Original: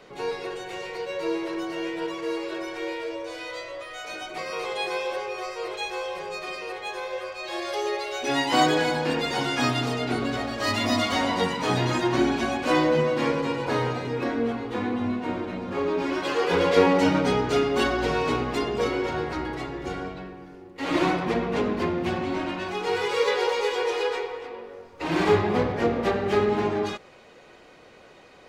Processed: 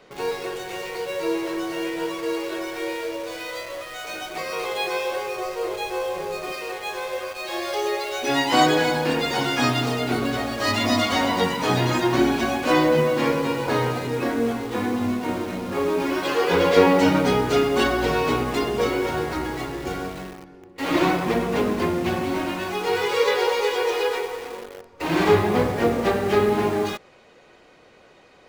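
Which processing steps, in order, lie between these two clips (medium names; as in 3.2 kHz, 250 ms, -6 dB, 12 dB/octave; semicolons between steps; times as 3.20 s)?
5.36–6.52 s: tilt shelf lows +5 dB; in parallel at -3.5 dB: word length cut 6-bit, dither none; on the sum: trim -1.5 dB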